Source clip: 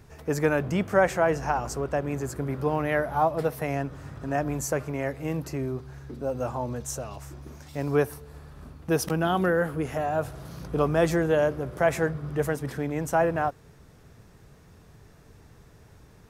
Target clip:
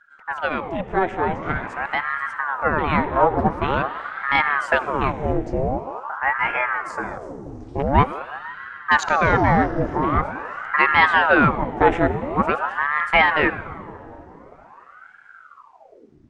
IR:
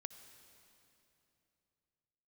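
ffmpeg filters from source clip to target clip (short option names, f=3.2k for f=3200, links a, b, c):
-filter_complex "[0:a]afwtdn=0.0141,dynaudnorm=f=740:g=5:m=11.5dB,asplit=2[a][b];[1:a]atrim=start_sample=2205,lowpass=7.1k[c];[b][c]afir=irnorm=-1:irlink=0,volume=12.5dB[d];[a][d]amix=inputs=2:normalize=0,aresample=22050,aresample=44100,aeval=exprs='val(0)*sin(2*PI*850*n/s+850*0.8/0.46*sin(2*PI*0.46*n/s))':c=same,volume=-9dB"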